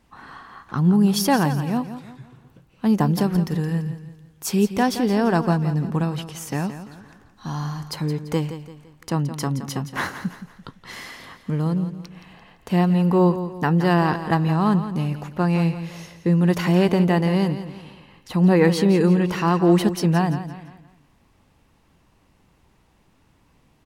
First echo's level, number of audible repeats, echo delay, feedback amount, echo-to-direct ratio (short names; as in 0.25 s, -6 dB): -11.5 dB, 3, 0.17 s, 39%, -11.0 dB